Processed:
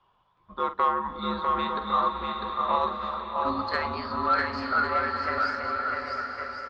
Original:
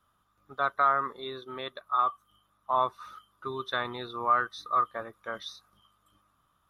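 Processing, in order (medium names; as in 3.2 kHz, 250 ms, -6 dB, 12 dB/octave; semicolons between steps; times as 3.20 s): pitch bend over the whole clip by +7 st starting unshifted; low-pass 4.3 kHz 24 dB/octave; bass shelf 120 Hz -9 dB; de-hum 45.78 Hz, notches 15; in parallel at -1 dB: compression, threshold -34 dBFS, peak gain reduction 13.5 dB; on the sum: frequency shift -220 Hz; saturation -12.5 dBFS, distortion -24 dB; doubling 47 ms -12 dB; on a send: bouncing-ball echo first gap 650 ms, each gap 0.7×, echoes 5; on the sum: swelling reverb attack 930 ms, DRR 5.5 dB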